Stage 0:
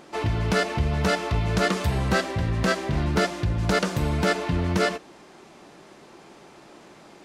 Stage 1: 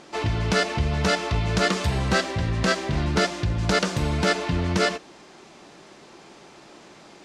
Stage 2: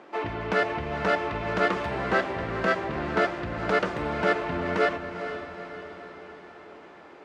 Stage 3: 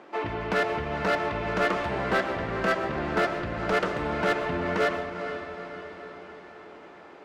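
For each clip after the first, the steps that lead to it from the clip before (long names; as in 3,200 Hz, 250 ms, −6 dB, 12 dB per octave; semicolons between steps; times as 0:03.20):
low-pass filter 7,200 Hz 12 dB per octave; high-shelf EQ 3,400 Hz +7.5 dB
three-way crossover with the lows and the highs turned down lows −15 dB, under 250 Hz, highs −21 dB, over 2,500 Hz; feedback delay with all-pass diffusion 452 ms, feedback 56%, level −9.5 dB
hard clipping −18.5 dBFS, distortion −15 dB; convolution reverb RT60 0.60 s, pre-delay 85 ms, DRR 11.5 dB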